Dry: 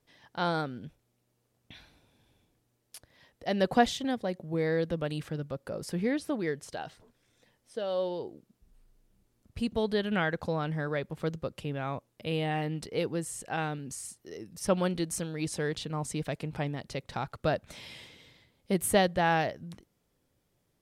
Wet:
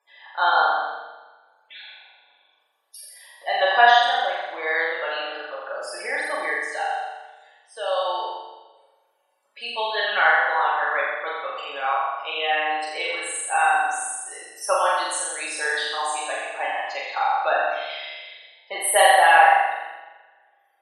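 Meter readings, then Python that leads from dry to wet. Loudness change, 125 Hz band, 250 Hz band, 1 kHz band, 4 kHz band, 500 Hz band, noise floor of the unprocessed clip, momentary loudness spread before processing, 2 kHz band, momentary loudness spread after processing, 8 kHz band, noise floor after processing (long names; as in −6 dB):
+10.0 dB, below −35 dB, −15.5 dB, +15.5 dB, +12.0 dB, +5.5 dB, −76 dBFS, 17 LU, +16.0 dB, 19 LU, +10.5 dB, −65 dBFS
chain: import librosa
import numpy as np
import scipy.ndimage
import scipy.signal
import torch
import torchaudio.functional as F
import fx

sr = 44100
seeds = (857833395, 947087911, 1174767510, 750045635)

p1 = fx.rev_double_slope(x, sr, seeds[0], early_s=0.83, late_s=2.2, knee_db=-23, drr_db=-2.5)
p2 = fx.spec_topn(p1, sr, count=64)
p3 = scipy.signal.sosfilt(scipy.signal.butter(4, 710.0, 'highpass', fs=sr, output='sos'), p2)
p4 = fx.peak_eq(p3, sr, hz=6000.0, db=-6.0, octaves=0.72)
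p5 = p4 + fx.room_flutter(p4, sr, wall_m=7.3, rt60_s=1.1, dry=0)
y = p5 * 10.0 ** (8.5 / 20.0)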